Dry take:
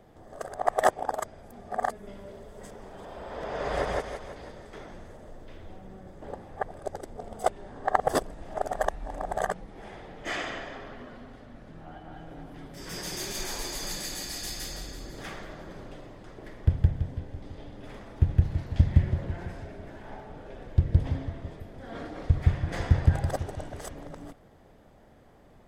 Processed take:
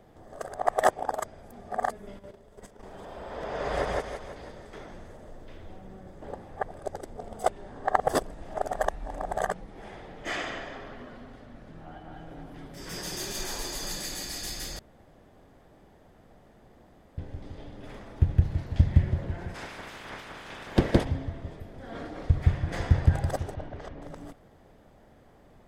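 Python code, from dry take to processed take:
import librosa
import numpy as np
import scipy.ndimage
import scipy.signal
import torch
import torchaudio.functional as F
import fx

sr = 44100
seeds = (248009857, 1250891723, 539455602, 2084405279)

y = fx.level_steps(x, sr, step_db=11, at=(2.17, 2.83))
y = fx.notch(y, sr, hz=2200.0, q=13.0, at=(12.99, 14.02))
y = fx.spec_clip(y, sr, under_db=27, at=(19.54, 21.03), fade=0.02)
y = fx.air_absorb(y, sr, metres=220.0, at=(23.54, 24.02))
y = fx.edit(y, sr, fx.room_tone_fill(start_s=14.79, length_s=2.39), tone=tone)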